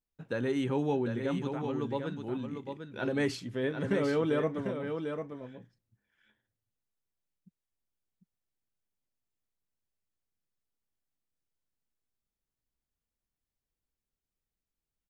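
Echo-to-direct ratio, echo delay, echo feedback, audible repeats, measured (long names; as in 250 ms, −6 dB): −6.5 dB, 748 ms, repeats not evenly spaced, 1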